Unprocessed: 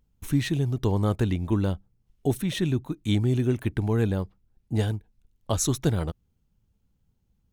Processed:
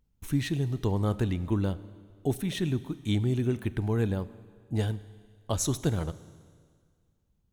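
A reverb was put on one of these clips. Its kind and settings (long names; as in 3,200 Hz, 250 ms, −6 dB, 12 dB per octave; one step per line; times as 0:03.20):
four-comb reverb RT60 1.9 s, combs from 30 ms, DRR 16 dB
level −3.5 dB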